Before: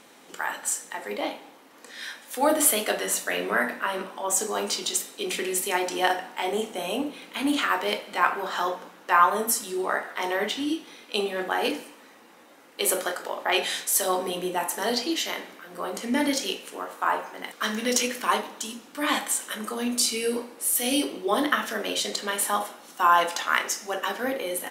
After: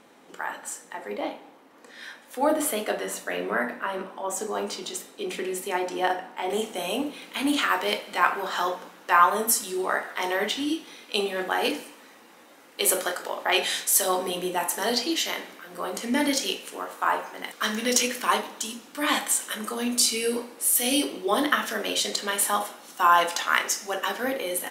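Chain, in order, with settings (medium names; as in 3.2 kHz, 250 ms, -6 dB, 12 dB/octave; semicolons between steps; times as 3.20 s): treble shelf 2.2 kHz -9 dB, from 6.50 s +2.5 dB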